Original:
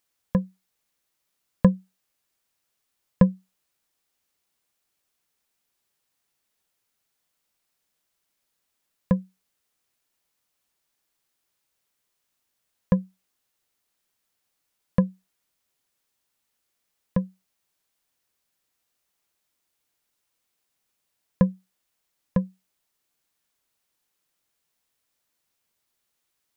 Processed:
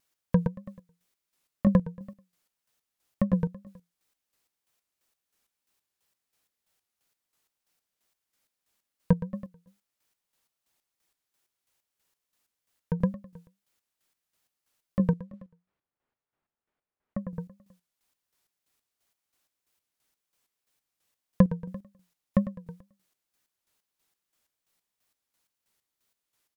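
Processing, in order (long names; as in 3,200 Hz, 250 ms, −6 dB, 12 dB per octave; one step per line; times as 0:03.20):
0:14.99–0:17.17: low-pass that shuts in the quiet parts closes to 1,500 Hz, open at −22 dBFS
repeating echo 109 ms, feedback 41%, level −4.5 dB
square-wave tremolo 3 Hz, depth 65%, duty 40%
tape wow and flutter 140 cents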